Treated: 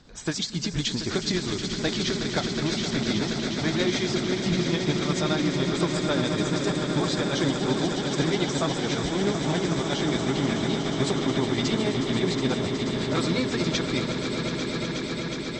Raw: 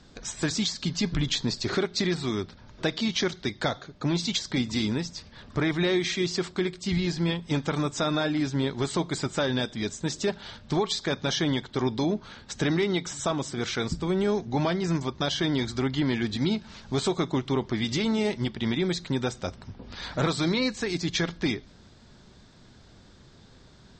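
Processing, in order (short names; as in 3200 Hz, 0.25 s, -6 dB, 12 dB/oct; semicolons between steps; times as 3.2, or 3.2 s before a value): swelling echo 0.187 s, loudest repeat 8, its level -10 dB; granular stretch 0.65×, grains 0.144 s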